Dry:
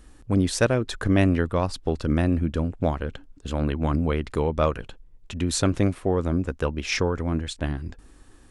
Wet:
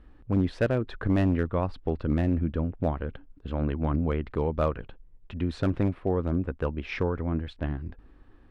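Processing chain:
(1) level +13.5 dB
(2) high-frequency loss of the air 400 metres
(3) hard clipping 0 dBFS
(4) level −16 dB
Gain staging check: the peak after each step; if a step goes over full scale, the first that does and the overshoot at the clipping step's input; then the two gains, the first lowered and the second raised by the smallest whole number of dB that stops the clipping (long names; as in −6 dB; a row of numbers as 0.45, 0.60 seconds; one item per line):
+7.5, +6.5, 0.0, −16.0 dBFS
step 1, 6.5 dB
step 1 +6.5 dB, step 4 −9 dB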